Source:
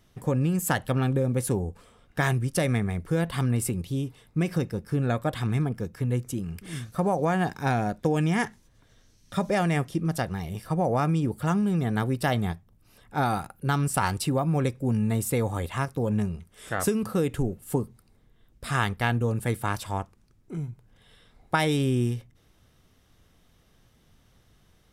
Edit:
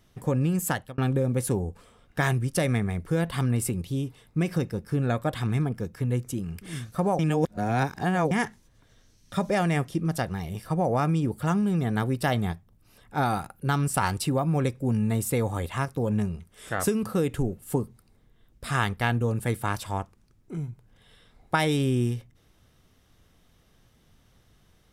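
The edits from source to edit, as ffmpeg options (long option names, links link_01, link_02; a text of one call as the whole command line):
ffmpeg -i in.wav -filter_complex "[0:a]asplit=4[link_01][link_02][link_03][link_04];[link_01]atrim=end=0.98,asetpts=PTS-STARTPTS,afade=type=out:start_time=0.64:duration=0.34[link_05];[link_02]atrim=start=0.98:end=7.192,asetpts=PTS-STARTPTS,afade=type=in:duration=0.004:curve=hsin[link_06];[link_03]atrim=start=7.188:end=8.312,asetpts=PTS-STARTPTS,areverse[link_07];[link_04]atrim=start=8.308[link_08];[link_05][link_06]concat=n=2:v=0:a=1[link_09];[link_09][link_07]acrossfade=duration=0.004:curve1=hsin:curve2=hsin[link_10];[link_10][link_08]acrossfade=duration=0.004:curve1=hsin:curve2=hsin" out.wav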